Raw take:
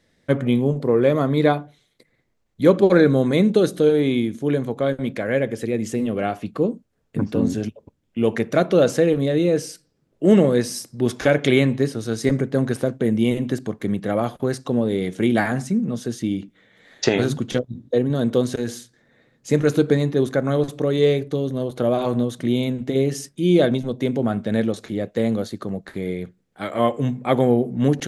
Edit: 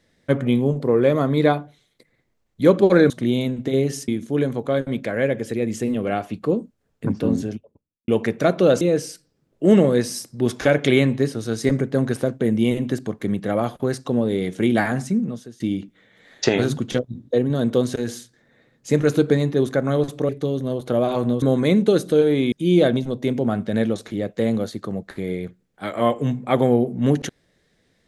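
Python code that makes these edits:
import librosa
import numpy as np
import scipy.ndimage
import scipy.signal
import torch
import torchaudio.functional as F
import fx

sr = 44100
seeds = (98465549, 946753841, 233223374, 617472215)

y = fx.studio_fade_out(x, sr, start_s=7.32, length_s=0.88)
y = fx.edit(y, sr, fx.swap(start_s=3.1, length_s=1.1, other_s=22.32, other_length_s=0.98),
    fx.cut(start_s=8.93, length_s=0.48),
    fx.fade_out_to(start_s=15.83, length_s=0.37, curve='qua', floor_db=-16.5),
    fx.cut(start_s=20.89, length_s=0.3), tone=tone)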